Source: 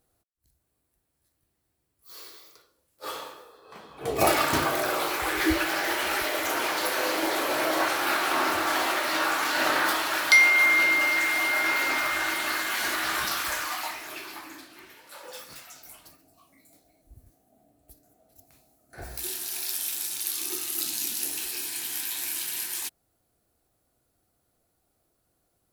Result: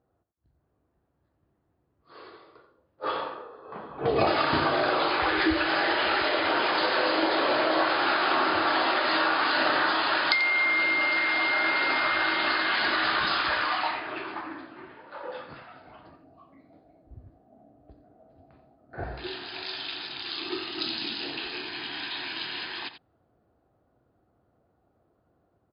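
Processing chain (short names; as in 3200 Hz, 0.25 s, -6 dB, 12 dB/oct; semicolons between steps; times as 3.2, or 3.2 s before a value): low-pass opened by the level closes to 1300 Hz, open at -20.5 dBFS; compressor 4:1, threshold -29 dBFS, peak gain reduction 13.5 dB; brick-wall FIR low-pass 5100 Hz; echo 88 ms -12.5 dB; AGC gain up to 5 dB; HPF 66 Hz; bell 2200 Hz -4.5 dB 0.38 oct; gain +2.5 dB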